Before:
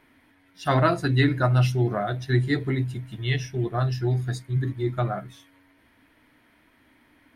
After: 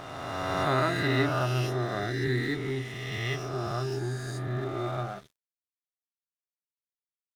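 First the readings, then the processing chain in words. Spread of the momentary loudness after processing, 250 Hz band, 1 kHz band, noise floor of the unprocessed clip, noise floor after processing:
8 LU, -5.5 dB, -2.5 dB, -61 dBFS, under -85 dBFS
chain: spectral swells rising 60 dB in 2.76 s; resonator 400 Hz, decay 0.17 s, harmonics all, mix 70%; crossover distortion -45.5 dBFS

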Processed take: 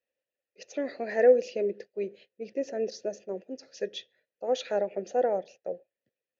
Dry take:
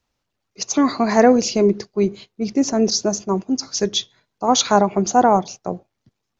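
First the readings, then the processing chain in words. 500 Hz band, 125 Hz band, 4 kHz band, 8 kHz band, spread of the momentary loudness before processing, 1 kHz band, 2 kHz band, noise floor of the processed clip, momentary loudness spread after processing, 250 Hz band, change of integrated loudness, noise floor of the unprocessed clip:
-7.0 dB, under -20 dB, -19.5 dB, n/a, 13 LU, -19.0 dB, -11.0 dB, under -85 dBFS, 16 LU, -21.0 dB, -11.5 dB, -78 dBFS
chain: vowel filter e

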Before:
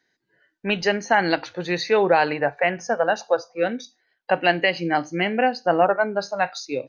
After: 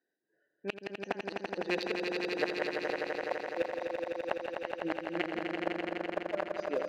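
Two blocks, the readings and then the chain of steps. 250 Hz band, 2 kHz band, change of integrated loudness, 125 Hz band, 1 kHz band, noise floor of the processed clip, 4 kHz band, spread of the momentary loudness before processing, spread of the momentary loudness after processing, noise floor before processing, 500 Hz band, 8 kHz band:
-10.5 dB, -14.0 dB, -13.5 dB, -17.0 dB, -17.0 dB, -82 dBFS, -13.0 dB, 7 LU, 6 LU, -73 dBFS, -12.5 dB, n/a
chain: Wiener smoothing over 41 samples; HPF 380 Hz 12 dB/oct; high shelf 2000 Hz +5 dB; flipped gate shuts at -14 dBFS, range -35 dB; swelling echo 84 ms, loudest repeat 5, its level -5.5 dB; gain -3.5 dB

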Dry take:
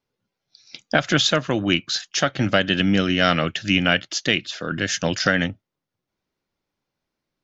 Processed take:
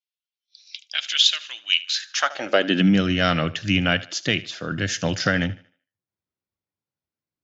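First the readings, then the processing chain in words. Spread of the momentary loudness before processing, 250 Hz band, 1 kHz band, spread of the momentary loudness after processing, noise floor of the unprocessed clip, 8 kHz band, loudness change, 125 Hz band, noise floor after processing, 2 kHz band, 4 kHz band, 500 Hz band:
5 LU, -1.0 dB, -2.5 dB, 11 LU, -84 dBFS, n/a, -1.0 dB, -0.5 dB, under -85 dBFS, -2.5 dB, +1.0 dB, -2.5 dB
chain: thinning echo 76 ms, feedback 37%, high-pass 200 Hz, level -18 dB; spectral noise reduction 11 dB; high-pass sweep 3000 Hz -> 92 Hz, 1.85–3.08; gain -2.5 dB

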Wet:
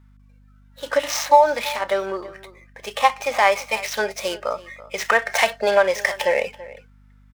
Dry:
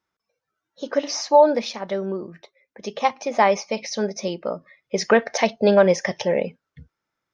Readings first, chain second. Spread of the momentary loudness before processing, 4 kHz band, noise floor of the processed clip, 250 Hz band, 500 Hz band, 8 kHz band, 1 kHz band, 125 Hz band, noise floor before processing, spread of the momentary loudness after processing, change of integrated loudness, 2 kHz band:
16 LU, +3.5 dB, -52 dBFS, -12.0 dB, -1.5 dB, n/a, +3.5 dB, under -10 dB, -83 dBFS, 16 LU, +0.5 dB, +6.5 dB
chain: median filter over 9 samples; compressor 6:1, threshold -19 dBFS, peak gain reduction 10.5 dB; harmonic-percussive split harmonic +9 dB; HPF 1100 Hz 12 dB/oct; outdoor echo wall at 57 m, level -18 dB; hum 50 Hz, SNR 29 dB; gain +9 dB

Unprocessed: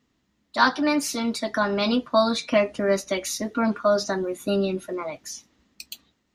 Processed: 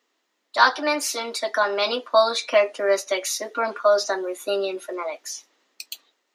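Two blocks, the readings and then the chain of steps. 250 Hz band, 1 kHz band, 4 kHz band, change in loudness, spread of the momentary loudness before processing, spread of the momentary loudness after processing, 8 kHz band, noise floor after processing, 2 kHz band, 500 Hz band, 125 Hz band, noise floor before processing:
-10.5 dB, +3.0 dB, +3.0 dB, +1.5 dB, 16 LU, 17 LU, +3.0 dB, -74 dBFS, +3.0 dB, +2.5 dB, under -20 dB, -72 dBFS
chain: HPF 400 Hz 24 dB/oct; gain +3 dB

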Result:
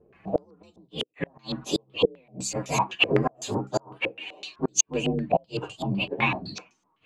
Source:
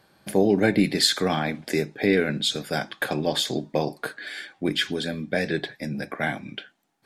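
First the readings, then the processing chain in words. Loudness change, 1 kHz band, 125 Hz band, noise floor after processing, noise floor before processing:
-2.5 dB, +1.5 dB, -1.5 dB, -71 dBFS, -63 dBFS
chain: inharmonic rescaling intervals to 127%; flipped gate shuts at -17 dBFS, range -37 dB; stepped low-pass 7.9 Hz 440–6500 Hz; gain +4 dB

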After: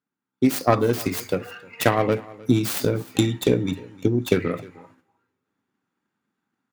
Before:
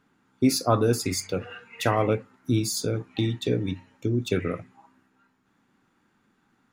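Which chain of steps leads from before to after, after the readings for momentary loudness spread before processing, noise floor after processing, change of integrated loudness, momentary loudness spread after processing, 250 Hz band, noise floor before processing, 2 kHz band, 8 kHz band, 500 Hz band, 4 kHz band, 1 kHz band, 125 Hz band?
10 LU, -85 dBFS, +3.5 dB, 9 LU, +4.0 dB, -69 dBFS, +5.0 dB, -1.5 dB, +4.0 dB, +0.5 dB, +3.5 dB, +1.5 dB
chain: tracing distortion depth 0.43 ms; HPF 100 Hz 12 dB/oct; gate -60 dBFS, range -17 dB; AGC gain up to 10 dB; echo 0.308 s -21 dB; two-slope reverb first 0.4 s, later 2.6 s, from -28 dB, DRR 19.5 dB; transient shaper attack +6 dB, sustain +2 dB; gain -5.5 dB

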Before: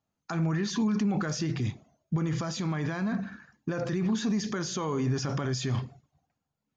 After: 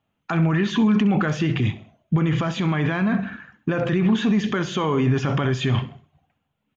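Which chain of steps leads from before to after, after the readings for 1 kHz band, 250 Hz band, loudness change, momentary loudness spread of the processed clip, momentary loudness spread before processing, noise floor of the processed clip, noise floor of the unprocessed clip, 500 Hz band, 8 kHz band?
+9.5 dB, +8.5 dB, +8.5 dB, 7 LU, 7 LU, -76 dBFS, -85 dBFS, +8.5 dB, n/a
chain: resonant high shelf 3900 Hz -8.5 dB, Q 3; feedback echo 66 ms, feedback 39%, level -16.5 dB; gain +8.5 dB

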